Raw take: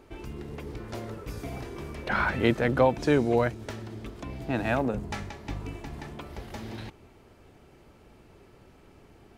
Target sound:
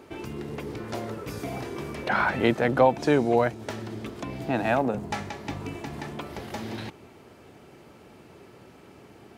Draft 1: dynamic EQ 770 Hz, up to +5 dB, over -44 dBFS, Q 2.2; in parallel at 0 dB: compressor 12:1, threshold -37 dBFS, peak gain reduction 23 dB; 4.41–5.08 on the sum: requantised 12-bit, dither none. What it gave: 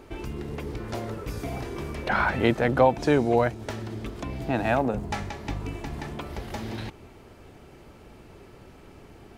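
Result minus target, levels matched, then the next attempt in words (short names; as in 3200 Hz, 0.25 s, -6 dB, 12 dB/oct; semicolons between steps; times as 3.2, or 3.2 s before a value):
125 Hz band +2.5 dB
dynamic EQ 770 Hz, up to +5 dB, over -44 dBFS, Q 2.2; HPF 120 Hz 12 dB/oct; in parallel at 0 dB: compressor 12:1, threshold -37 dBFS, peak gain reduction 22.5 dB; 4.41–5.08 on the sum: requantised 12-bit, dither none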